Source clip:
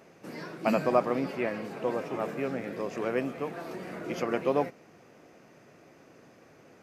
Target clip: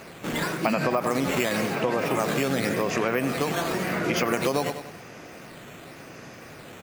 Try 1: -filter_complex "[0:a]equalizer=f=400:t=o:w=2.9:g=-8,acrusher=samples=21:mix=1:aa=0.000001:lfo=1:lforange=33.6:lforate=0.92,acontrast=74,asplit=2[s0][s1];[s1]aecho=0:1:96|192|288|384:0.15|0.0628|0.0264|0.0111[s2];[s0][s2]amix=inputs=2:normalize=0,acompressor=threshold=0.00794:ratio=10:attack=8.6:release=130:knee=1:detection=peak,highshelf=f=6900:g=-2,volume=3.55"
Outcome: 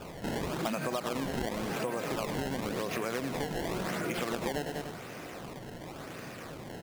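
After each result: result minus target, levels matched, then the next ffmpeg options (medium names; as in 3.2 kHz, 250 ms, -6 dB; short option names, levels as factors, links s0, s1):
compression: peak gain reduction +9 dB; decimation with a swept rate: distortion +11 dB
-filter_complex "[0:a]equalizer=f=400:t=o:w=2.9:g=-8,acrusher=samples=21:mix=1:aa=0.000001:lfo=1:lforange=33.6:lforate=0.92,acontrast=74,asplit=2[s0][s1];[s1]aecho=0:1:96|192|288|384:0.15|0.0628|0.0264|0.0111[s2];[s0][s2]amix=inputs=2:normalize=0,acompressor=threshold=0.0251:ratio=10:attack=8.6:release=130:knee=1:detection=peak,highshelf=f=6900:g=-2,volume=3.55"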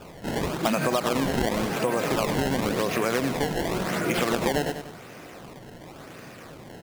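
decimation with a swept rate: distortion +11 dB
-filter_complex "[0:a]equalizer=f=400:t=o:w=2.9:g=-8,acrusher=samples=5:mix=1:aa=0.000001:lfo=1:lforange=8:lforate=0.92,acontrast=74,asplit=2[s0][s1];[s1]aecho=0:1:96|192|288|384:0.15|0.0628|0.0264|0.0111[s2];[s0][s2]amix=inputs=2:normalize=0,acompressor=threshold=0.0251:ratio=10:attack=8.6:release=130:knee=1:detection=peak,highshelf=f=6900:g=-2,volume=3.55"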